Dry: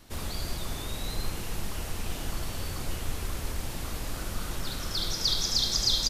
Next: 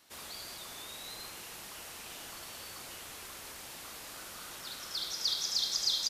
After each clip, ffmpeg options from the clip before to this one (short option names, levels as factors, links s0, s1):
-af "highpass=f=950:p=1,volume=0.596"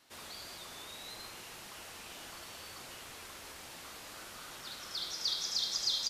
-af "highshelf=f=8500:g=-7,flanger=delay=7.2:depth=5.2:regen=-61:speed=0.67:shape=triangular,volume=1.5"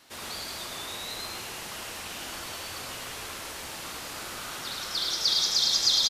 -af "aecho=1:1:107:0.708,volume=2.66"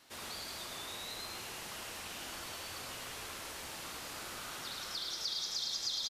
-af "acompressor=threshold=0.0178:ratio=2,volume=0.531"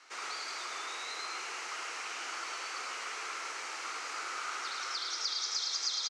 -af "highpass=f=380:w=0.5412,highpass=f=380:w=1.3066,equalizer=f=590:t=q:w=4:g=-7,equalizer=f=1300:t=q:w=4:g=9,equalizer=f=2200:t=q:w=4:g=6,equalizer=f=3500:t=q:w=4:g=-6,equalizer=f=6200:t=q:w=4:g=3,lowpass=f=7400:w=0.5412,lowpass=f=7400:w=1.3066,volume=1.5"